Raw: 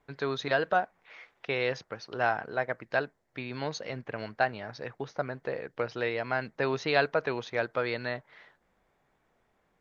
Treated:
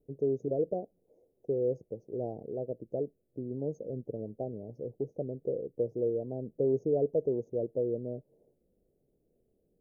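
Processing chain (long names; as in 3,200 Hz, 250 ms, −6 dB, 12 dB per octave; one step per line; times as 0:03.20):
inverse Chebyshev band-stop filter 1,200–4,300 Hz, stop band 60 dB
parametric band 500 Hz +6 dB 1.2 octaves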